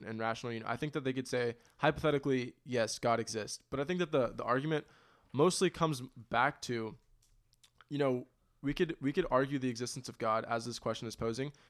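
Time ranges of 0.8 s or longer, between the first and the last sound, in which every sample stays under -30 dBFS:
6.82–7.94 s

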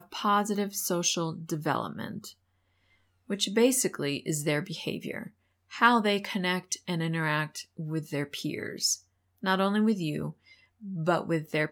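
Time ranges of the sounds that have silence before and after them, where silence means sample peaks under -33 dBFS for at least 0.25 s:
3.30–5.27 s
5.73–8.94 s
9.43–10.30 s

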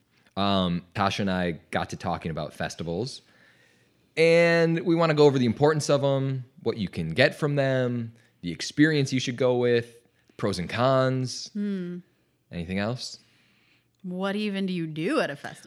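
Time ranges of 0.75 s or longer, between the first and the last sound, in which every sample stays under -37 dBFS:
3.17–4.17 s
13.15–14.05 s

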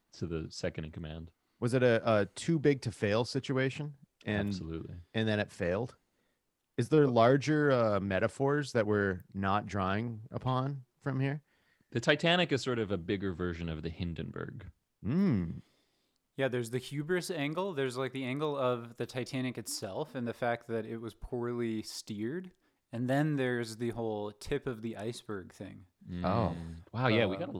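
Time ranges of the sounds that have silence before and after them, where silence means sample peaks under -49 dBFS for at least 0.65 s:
6.78–15.60 s

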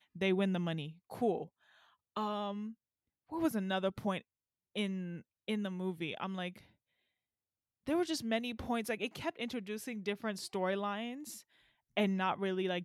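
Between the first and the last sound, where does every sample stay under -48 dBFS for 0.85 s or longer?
6.59–7.86 s

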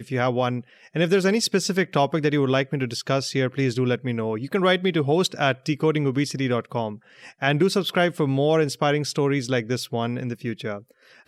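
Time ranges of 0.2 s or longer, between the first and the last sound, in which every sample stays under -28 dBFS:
0.60–0.96 s
6.93–7.42 s

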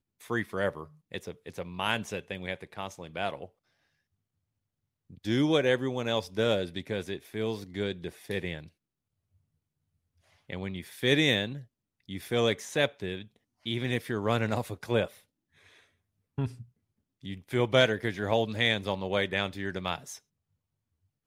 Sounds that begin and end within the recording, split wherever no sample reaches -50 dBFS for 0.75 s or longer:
5.10–8.68 s
10.49–20.18 s

